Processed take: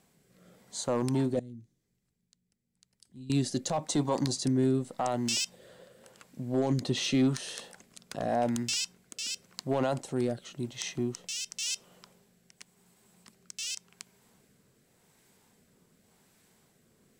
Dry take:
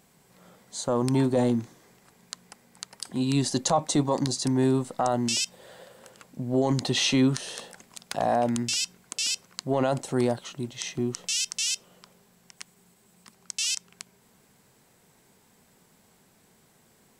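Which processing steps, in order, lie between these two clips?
0:01.39–0:03.30: guitar amp tone stack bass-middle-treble 10-0-1
hard clipping −16 dBFS, distortion −23 dB
rotating-speaker cabinet horn 0.9 Hz
level −2 dB

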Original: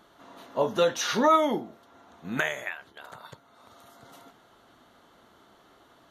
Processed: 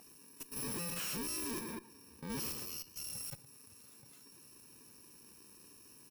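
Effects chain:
samples in bit-reversed order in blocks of 64 samples
low-shelf EQ 61 Hz −8.5 dB
notch filter 3,200 Hz, Q 12
0:00.65–0:02.90: high-shelf EQ 3,800 Hz −6 dB
repeating echo 113 ms, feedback 33%, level −13 dB
noise reduction from a noise print of the clip's start 8 dB
output level in coarse steps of 18 dB
tube saturation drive 53 dB, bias 0.3
level +15 dB

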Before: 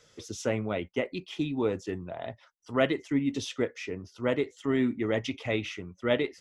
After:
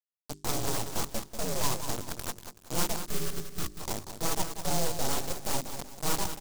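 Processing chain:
partials spread apart or drawn together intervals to 119%
high-shelf EQ 4,500 Hz −9.5 dB
in parallel at +1 dB: downward compressor 6 to 1, threshold −36 dBFS, peak gain reduction 14 dB
on the sum: bit reduction 5 bits
octave-band graphic EQ 125/500/2,000 Hz +5/+5/+5 dB
full-wave rectification
on a send: repeating echo 189 ms, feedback 37%, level −9 dB
on the sum: gain on a spectral selection 0:03.07–0:03.80, 450–1,100 Hz −14 dB
mains-hum notches 50/100/150/200/250/300/350/400 Hz
short delay modulated by noise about 6,000 Hz, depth 0.15 ms
level −4.5 dB

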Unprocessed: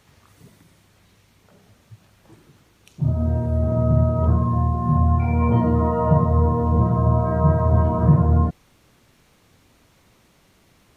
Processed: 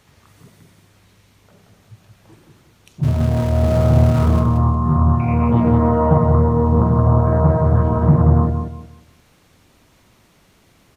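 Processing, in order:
0:03.03–0:04.40: converter with a step at zero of −26 dBFS
repeating echo 179 ms, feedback 28%, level −6.5 dB
highs frequency-modulated by the lows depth 0.33 ms
level +2 dB

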